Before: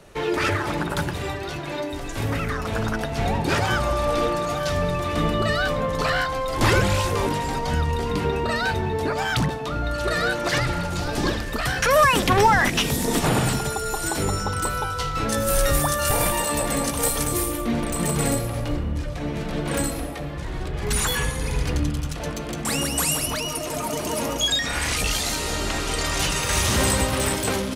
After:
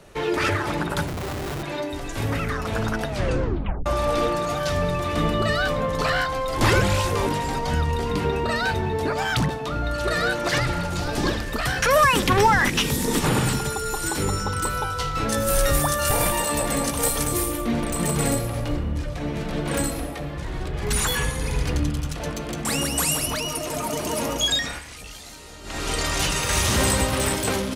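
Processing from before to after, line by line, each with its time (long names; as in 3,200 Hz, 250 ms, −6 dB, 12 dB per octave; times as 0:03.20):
0:01.07–0:01.63: comparator with hysteresis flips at −31 dBFS
0:03.08: tape stop 0.78 s
0:11.98–0:14.74: parametric band 680 Hz −11 dB 0.21 octaves
0:24.58–0:25.88: duck −16 dB, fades 0.25 s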